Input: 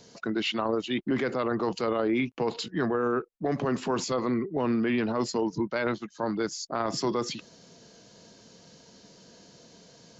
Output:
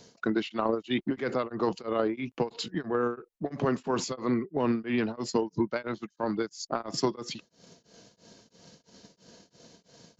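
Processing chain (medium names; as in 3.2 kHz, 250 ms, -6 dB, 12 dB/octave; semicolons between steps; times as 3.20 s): transient shaper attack +6 dB, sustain 0 dB, from 5.29 s sustain -6 dB; tremolo of two beating tones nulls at 3 Hz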